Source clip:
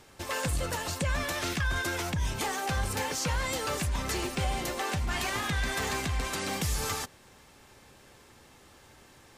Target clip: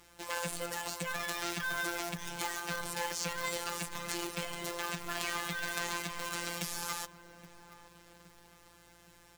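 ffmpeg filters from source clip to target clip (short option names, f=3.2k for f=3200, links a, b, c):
-filter_complex "[0:a]asplit=2[a][b];[b]adelay=818,lowpass=f=950:p=1,volume=-13dB,asplit=2[c][d];[d]adelay=818,lowpass=f=950:p=1,volume=0.54,asplit=2[e][f];[f]adelay=818,lowpass=f=950:p=1,volume=0.54,asplit=2[g][h];[h]adelay=818,lowpass=f=950:p=1,volume=0.54,asplit=2[i][j];[j]adelay=818,lowpass=f=950:p=1,volume=0.54,asplit=2[k][l];[l]adelay=818,lowpass=f=950:p=1,volume=0.54[m];[c][e][g][i][k][m]amix=inputs=6:normalize=0[n];[a][n]amix=inputs=2:normalize=0,afftfilt=real='hypot(re,im)*cos(PI*b)':imag='0':win_size=1024:overlap=0.75,lowshelf=f=310:g=-8,acrusher=bits=2:mode=log:mix=0:aa=0.000001,aeval=exprs='val(0)+0.000316*(sin(2*PI*60*n/s)+sin(2*PI*2*60*n/s)/2+sin(2*PI*3*60*n/s)/3+sin(2*PI*4*60*n/s)/4+sin(2*PI*5*60*n/s)/5)':c=same,volume=-1dB"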